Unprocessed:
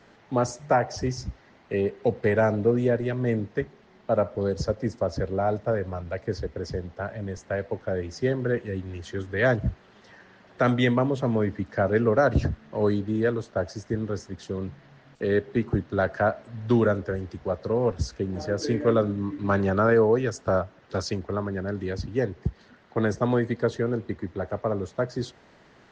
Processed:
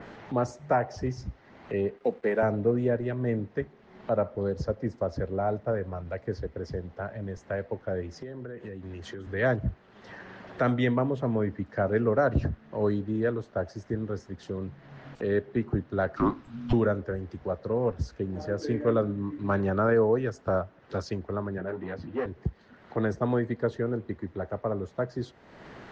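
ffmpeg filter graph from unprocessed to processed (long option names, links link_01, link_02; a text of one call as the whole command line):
ffmpeg -i in.wav -filter_complex "[0:a]asettb=1/sr,asplit=3[link_01][link_02][link_03];[link_01]atrim=end=1.974[link_04];[link_02]atrim=start=1.97:end=2.43,asetpts=PTS-STARTPTS,afade=type=in:duration=0.004:curve=qsin,afade=type=out:start_time=0.456:duration=0.004:curve=qsin,highpass=frequency=200:width=0.5412,highpass=frequency=200:width=1.3066,aeval=exprs='sgn(val(0))*max(abs(val(0))-0.00237,0)':channel_layout=same[link_05];[link_03]atrim=start=2.426[link_06];[link_04][link_05]acrossfade=duration=0.004:curve1=hsin:curve2=qsin[link_07];[link_07][link_06]acrossfade=duration=0.004:curve1=qsin:curve2=hsin,asettb=1/sr,asplit=3[link_08][link_09][link_10];[link_08]atrim=end=8.184[link_11];[link_09]atrim=start=8.18:end=9.27,asetpts=PTS-STARTPTS,afade=type=in:duration=0.004:curve=qsin,afade=type=out:start_time=1.086:duration=0.004:curve=qsin,highpass=96,acompressor=threshold=-36dB:ratio=6:attack=3.2:release=140:knee=1:detection=peak[link_12];[link_10]atrim=start=9.266[link_13];[link_11][link_12]acrossfade=duration=0.004:curve1=hsin:curve2=qsin[link_14];[link_14][link_13]acrossfade=duration=0.004:curve1=qsin:curve2=hsin,asettb=1/sr,asplit=3[link_15][link_16][link_17];[link_15]atrim=end=16.164[link_18];[link_16]atrim=start=16.16:end=16.73,asetpts=PTS-STARTPTS,afade=type=in:duration=0.004:curve=qsin,afade=type=out:start_time=0.566:duration=0.004:curve=qsin,highshelf=frequency=2700:gain=11,asplit=2[link_19][link_20];[link_20]adelay=31,volume=-13dB[link_21];[link_19][link_21]amix=inputs=2:normalize=0,atrim=end_sample=25137,afreqshift=-350[link_22];[link_17]atrim=start=16.726[link_23];[link_18][link_22]acrossfade=duration=0.004:curve1=hsin:curve2=qsin[link_24];[link_24][link_23]acrossfade=duration=0.004:curve1=qsin:curve2=hsin,asettb=1/sr,asplit=3[link_25][link_26][link_27];[link_25]atrim=end=21.584[link_28];[link_26]atrim=start=21.58:end=22.26,asetpts=PTS-STARTPTS,afade=type=in:duration=0.004:curve=qsin,afade=type=out:start_time=0.676:duration=0.004:curve=qsin,volume=24.5dB,asoftclip=hard,volume=-24.5dB,highpass=180,lowpass=3100,asplit=2[link_29][link_30];[link_30]adelay=12,volume=-2.5dB[link_31];[link_29][link_31]amix=inputs=2:normalize=0,atrim=end_sample=29988[link_32];[link_27]atrim=start=22.256[link_33];[link_28][link_32]acrossfade=duration=0.004:curve1=hsin:curve2=qsin[link_34];[link_34][link_33]acrossfade=duration=0.004:curve1=qsin:curve2=hsin,highshelf=frequency=4400:gain=-11,acompressor=mode=upward:threshold=-30dB:ratio=2.5,adynamicequalizer=threshold=0.00562:dfrequency=3400:dqfactor=0.7:tfrequency=3400:tqfactor=0.7:attack=5:release=100:ratio=0.375:range=2:mode=cutabove:tftype=highshelf,volume=-3dB" out.wav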